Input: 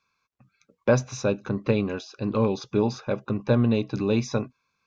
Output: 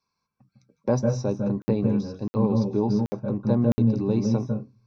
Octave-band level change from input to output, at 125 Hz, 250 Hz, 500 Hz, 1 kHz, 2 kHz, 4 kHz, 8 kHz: +2.5 dB, +3.0 dB, -1.5 dB, -2.0 dB, under -10 dB, -7.5 dB, no reading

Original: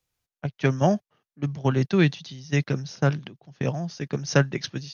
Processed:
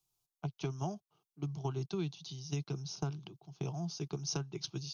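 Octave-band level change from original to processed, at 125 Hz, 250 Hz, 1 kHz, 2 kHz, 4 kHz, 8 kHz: -13.0 dB, -15.5 dB, -14.5 dB, -24.0 dB, -8.0 dB, no reading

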